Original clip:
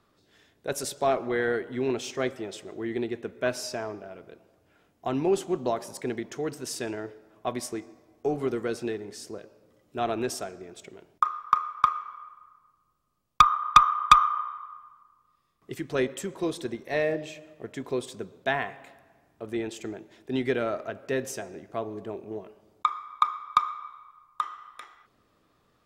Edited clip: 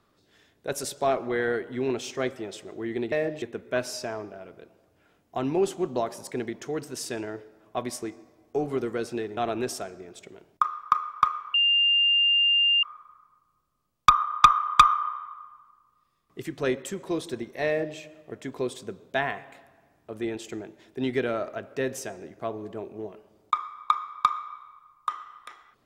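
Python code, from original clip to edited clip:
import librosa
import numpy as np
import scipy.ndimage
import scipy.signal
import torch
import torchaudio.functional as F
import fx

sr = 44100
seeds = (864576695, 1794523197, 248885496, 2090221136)

y = fx.edit(x, sr, fx.cut(start_s=9.07, length_s=0.91),
    fx.insert_tone(at_s=12.15, length_s=1.29, hz=2800.0, db=-18.0),
    fx.duplicate(start_s=16.99, length_s=0.3, to_s=3.12), tone=tone)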